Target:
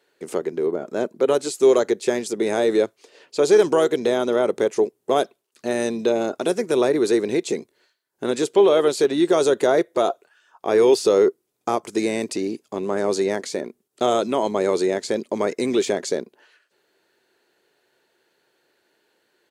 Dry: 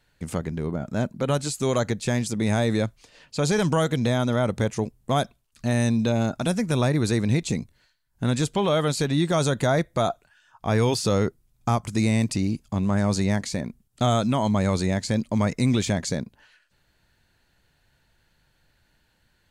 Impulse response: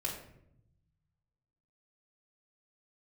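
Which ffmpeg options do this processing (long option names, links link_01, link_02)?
-filter_complex "[0:a]asplit=2[link_01][link_02];[link_02]asetrate=35002,aresample=44100,atempo=1.25992,volume=-16dB[link_03];[link_01][link_03]amix=inputs=2:normalize=0,highpass=frequency=390:width_type=q:width=4.5"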